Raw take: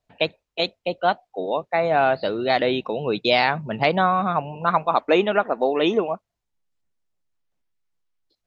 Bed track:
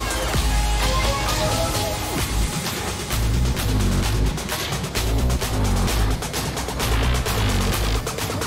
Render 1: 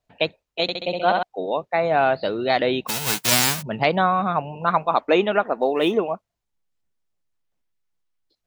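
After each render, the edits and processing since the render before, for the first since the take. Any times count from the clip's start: 0.62–1.23 s: flutter echo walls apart 11.2 m, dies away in 1.1 s; 2.87–3.61 s: formants flattened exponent 0.1; 5.54–5.97 s: median filter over 5 samples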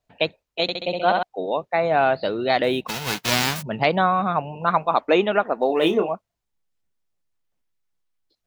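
2.63–3.56 s: median filter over 5 samples; 5.67–6.09 s: doubling 25 ms -6.5 dB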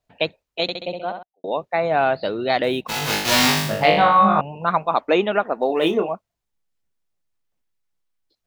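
0.65–1.44 s: studio fade out; 2.88–4.41 s: flutter echo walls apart 3.4 m, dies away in 0.71 s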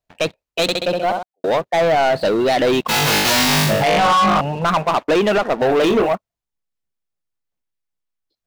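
peak limiter -10.5 dBFS, peak gain reduction 9 dB; waveshaping leveller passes 3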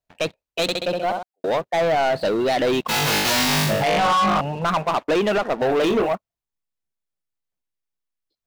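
trim -4 dB

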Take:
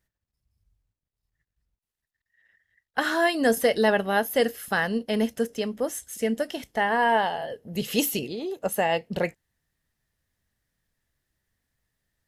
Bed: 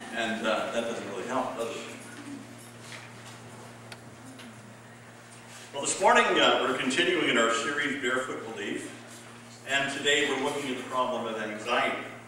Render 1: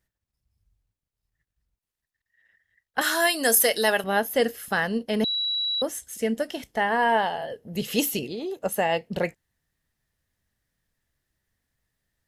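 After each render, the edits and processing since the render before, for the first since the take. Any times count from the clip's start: 3.01–4.04 s: RIAA curve recording; 5.24–5.82 s: bleep 3.91 kHz -23.5 dBFS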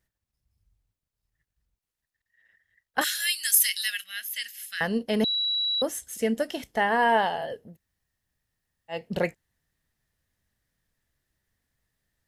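3.04–4.81 s: inverse Chebyshev high-pass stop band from 1 kHz; 7.69–8.96 s: room tone, crossfade 0.16 s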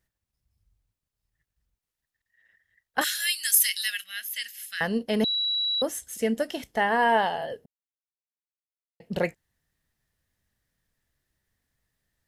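7.66–9.00 s: mute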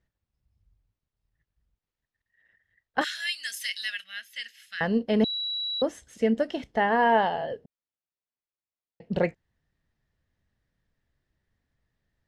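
low-pass 4.6 kHz 12 dB/octave; tilt shelf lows +3 dB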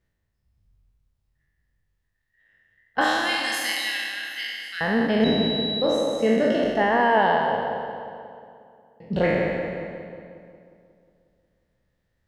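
spectral sustain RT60 1.89 s; filtered feedback delay 180 ms, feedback 63%, low-pass 2.5 kHz, level -8.5 dB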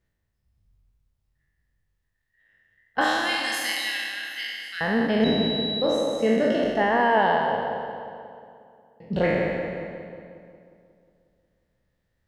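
trim -1 dB

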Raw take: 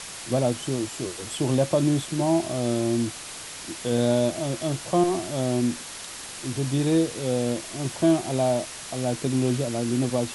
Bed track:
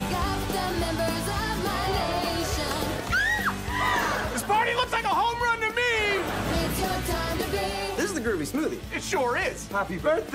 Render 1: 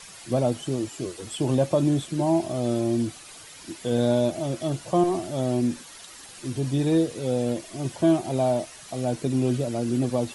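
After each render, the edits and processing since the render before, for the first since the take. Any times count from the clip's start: noise reduction 10 dB, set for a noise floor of -38 dBFS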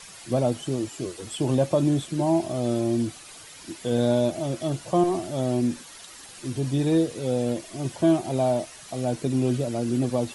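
no audible change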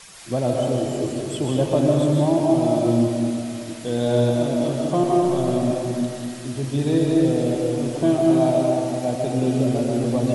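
algorithmic reverb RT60 2.5 s, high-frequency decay 0.5×, pre-delay 95 ms, DRR -2 dB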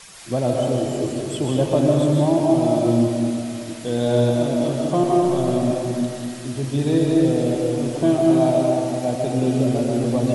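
trim +1 dB

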